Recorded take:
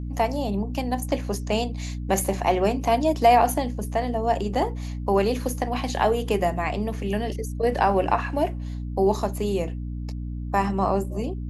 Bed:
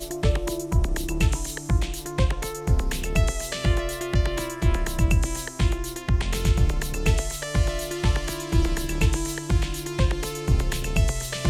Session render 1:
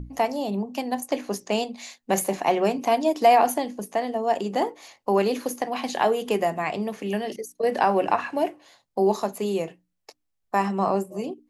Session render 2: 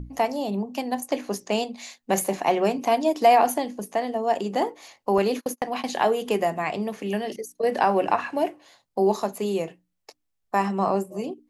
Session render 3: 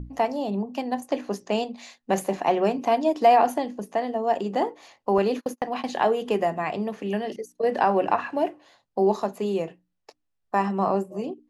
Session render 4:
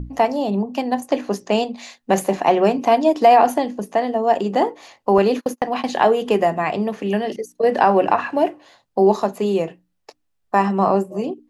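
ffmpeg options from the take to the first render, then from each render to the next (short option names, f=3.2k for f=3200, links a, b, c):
-af "bandreject=f=60:t=h:w=6,bandreject=f=120:t=h:w=6,bandreject=f=180:t=h:w=6,bandreject=f=240:t=h:w=6,bandreject=f=300:t=h:w=6"
-filter_complex "[0:a]asettb=1/sr,asplit=3[a][b][c];[a]atrim=end=5.184[d];[b]atrim=start=5.18:end=5.84,asetpts=PTS-STARTPTS,afade=t=in:d=0.004:c=qsin,afade=t=out:st=0.656:d=0.004:c=qsin,agate=range=-33dB:threshold=-33dB:ratio=16:release=100:detection=peak[e];[c]atrim=start=5.836[f];[d][e]acrossfade=d=0.004:c1=hsin:c2=qsin[g];[g][f]acrossfade=d=0.004:c1=qsin:c2=hsin"
-af "aemphasis=mode=reproduction:type=50kf,bandreject=f=2.2k:w=18"
-af "volume=6.5dB,alimiter=limit=-3dB:level=0:latency=1"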